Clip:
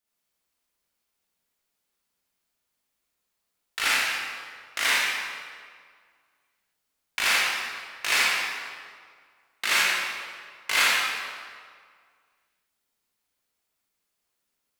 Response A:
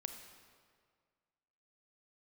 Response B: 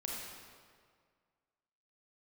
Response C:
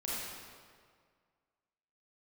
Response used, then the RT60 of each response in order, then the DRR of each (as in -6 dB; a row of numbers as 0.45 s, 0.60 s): C; 1.9 s, 1.9 s, 1.9 s; 6.0 dB, -3.5 dB, -8.0 dB